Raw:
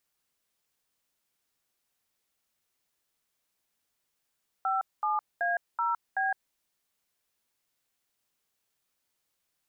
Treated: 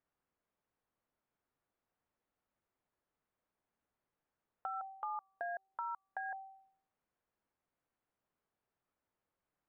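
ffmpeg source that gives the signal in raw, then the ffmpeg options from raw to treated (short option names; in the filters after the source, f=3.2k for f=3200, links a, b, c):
-f lavfi -i "aevalsrc='0.0398*clip(min(mod(t,0.379),0.162-mod(t,0.379))/0.002,0,1)*(eq(floor(t/0.379),0)*(sin(2*PI*770*mod(t,0.379))+sin(2*PI*1336*mod(t,0.379)))+eq(floor(t/0.379),1)*(sin(2*PI*852*mod(t,0.379))+sin(2*PI*1209*mod(t,0.379)))+eq(floor(t/0.379),2)*(sin(2*PI*697*mod(t,0.379))+sin(2*PI*1633*mod(t,0.379)))+eq(floor(t/0.379),3)*(sin(2*PI*941*mod(t,0.379))+sin(2*PI*1336*mod(t,0.379)))+eq(floor(t/0.379),4)*(sin(2*PI*770*mod(t,0.379))+sin(2*PI*1633*mod(t,0.379))))':d=1.895:s=44100"
-af "lowpass=1.3k,bandreject=f=386.3:t=h:w=4,bandreject=f=772.6:t=h:w=4,bandreject=f=1.1589k:t=h:w=4,acompressor=threshold=-43dB:ratio=2.5"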